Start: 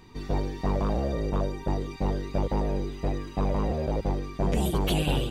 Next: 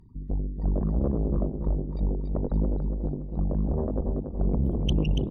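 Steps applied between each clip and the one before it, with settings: resonances exaggerated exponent 3; Chebyshev shaper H 4 -12 dB, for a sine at -15 dBFS; feedback delay 284 ms, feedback 44%, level -6.5 dB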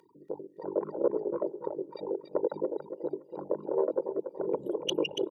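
reverb removal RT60 1.2 s; high-pass 300 Hz 24 dB/octave; comb 2.1 ms, depth 84%; trim +3.5 dB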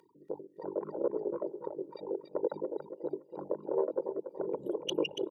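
tremolo 3.2 Hz, depth 35%; trim -1.5 dB

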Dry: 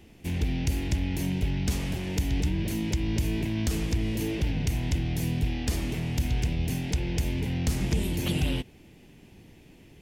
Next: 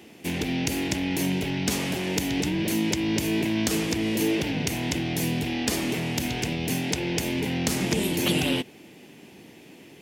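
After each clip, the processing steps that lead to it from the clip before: high-pass 230 Hz 12 dB/octave; trim +8 dB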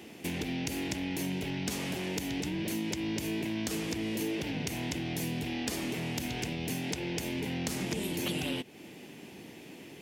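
compression 2.5:1, threshold -35 dBFS, peak gain reduction 10.5 dB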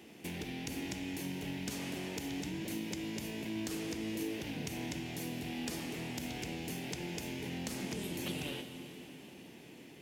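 plate-style reverb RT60 3.7 s, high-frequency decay 0.95×, DRR 6 dB; trim -6.5 dB

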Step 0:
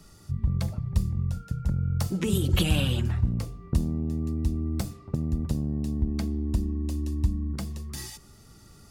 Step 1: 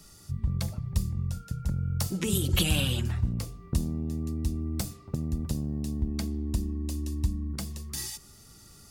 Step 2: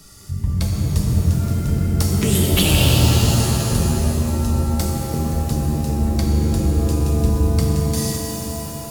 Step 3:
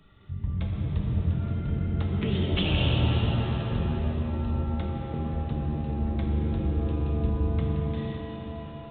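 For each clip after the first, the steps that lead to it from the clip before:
treble shelf 3.1 kHz +9 dB; trim -3 dB
pitch-shifted reverb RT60 3.1 s, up +7 st, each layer -2 dB, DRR -0.5 dB; trim +6.5 dB
resampled via 8 kHz; trim -9 dB

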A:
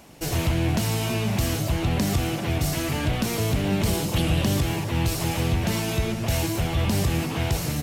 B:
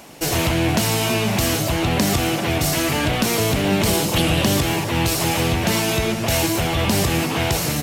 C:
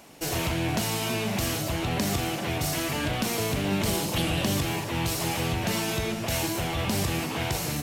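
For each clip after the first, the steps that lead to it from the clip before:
bass shelf 160 Hz -11 dB; trim +8.5 dB
flutter echo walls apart 7.1 m, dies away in 0.23 s; trim -8.5 dB

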